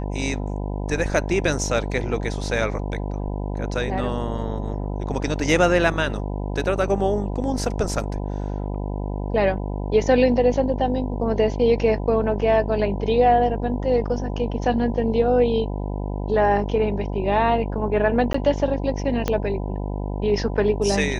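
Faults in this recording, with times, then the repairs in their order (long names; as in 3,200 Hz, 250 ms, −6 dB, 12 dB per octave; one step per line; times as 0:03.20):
mains buzz 50 Hz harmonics 20 −27 dBFS
0:18.33–0:18.34: drop-out 14 ms
0:19.28: click −8 dBFS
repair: click removal
hum removal 50 Hz, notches 20
repair the gap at 0:18.33, 14 ms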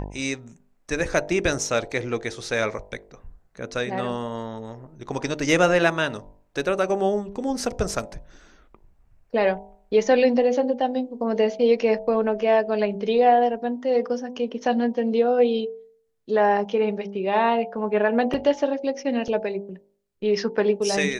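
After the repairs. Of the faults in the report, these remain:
0:19.28: click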